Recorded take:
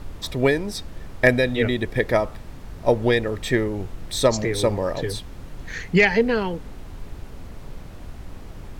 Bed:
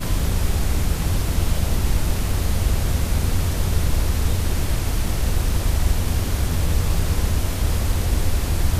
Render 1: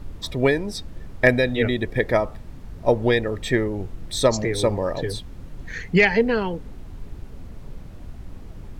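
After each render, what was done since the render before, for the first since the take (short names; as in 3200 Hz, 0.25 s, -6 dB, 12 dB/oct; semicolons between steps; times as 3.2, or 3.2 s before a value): denoiser 6 dB, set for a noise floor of -39 dBFS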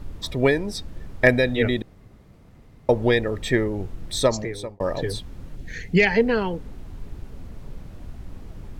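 1.82–2.89 room tone; 4.16–4.8 fade out; 5.56–6.07 bell 1100 Hz -13 dB 0.79 oct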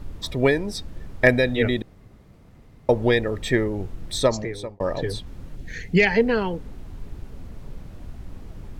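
4.17–5.27 high shelf 8200 Hz -6 dB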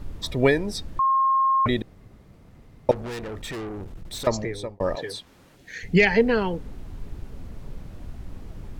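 0.99–1.66 bleep 1070 Hz -17 dBFS; 2.91–4.27 tube stage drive 31 dB, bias 0.5; 4.95–5.83 HPF 720 Hz 6 dB/oct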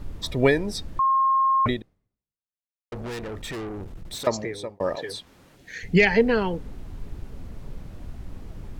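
1.69–2.92 fade out exponential; 4.15–5.09 HPF 180 Hz 6 dB/oct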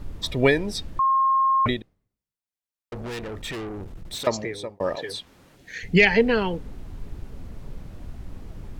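dynamic EQ 2900 Hz, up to +5 dB, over -43 dBFS, Q 1.5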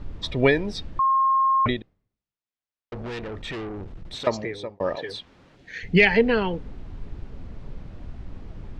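LPF 4400 Hz 12 dB/oct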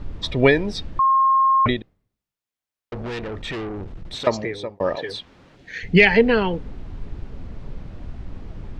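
gain +3.5 dB; limiter -1 dBFS, peak gain reduction 1 dB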